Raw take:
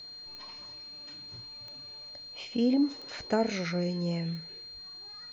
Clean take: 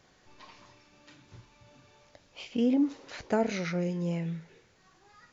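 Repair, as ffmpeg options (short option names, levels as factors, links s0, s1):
-filter_complex "[0:a]adeclick=t=4,bandreject=f=4200:w=30,asplit=3[s0][s1][s2];[s0]afade=t=out:st=4.73:d=0.02[s3];[s1]highpass=f=140:w=0.5412,highpass=f=140:w=1.3066,afade=t=in:st=4.73:d=0.02,afade=t=out:st=4.85:d=0.02[s4];[s2]afade=t=in:st=4.85:d=0.02[s5];[s3][s4][s5]amix=inputs=3:normalize=0"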